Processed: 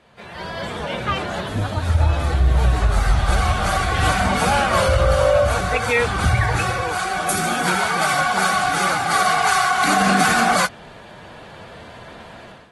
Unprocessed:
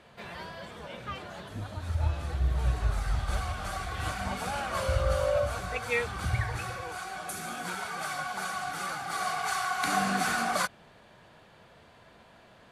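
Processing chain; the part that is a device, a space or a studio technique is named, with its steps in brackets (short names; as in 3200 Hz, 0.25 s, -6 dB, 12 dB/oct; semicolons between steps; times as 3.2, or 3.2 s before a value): low-bitrate web radio (AGC gain up to 15 dB; limiter -8 dBFS, peak gain reduction 5.5 dB; AAC 32 kbps 48000 Hz)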